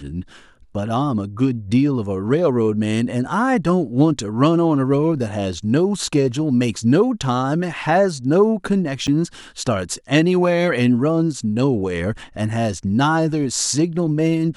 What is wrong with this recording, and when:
9.07–9.08 gap 7.9 ms

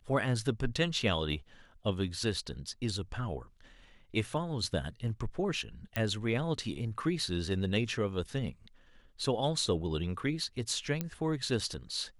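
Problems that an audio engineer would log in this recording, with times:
5.96 pop -18 dBFS
11.01 pop -19 dBFS

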